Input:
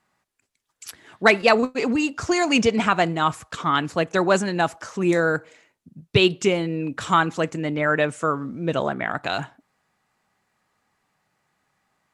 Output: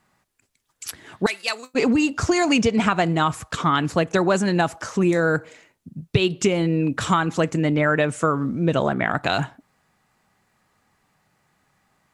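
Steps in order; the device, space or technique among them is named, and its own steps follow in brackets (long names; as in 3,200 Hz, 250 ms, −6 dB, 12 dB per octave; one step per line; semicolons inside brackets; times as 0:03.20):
0:01.26–0:01.74: first difference
ASMR close-microphone chain (low-shelf EQ 220 Hz +6.5 dB; downward compressor 10 to 1, threshold −19 dBFS, peak gain reduction 11 dB; high-shelf EQ 10,000 Hz +4 dB)
level +4 dB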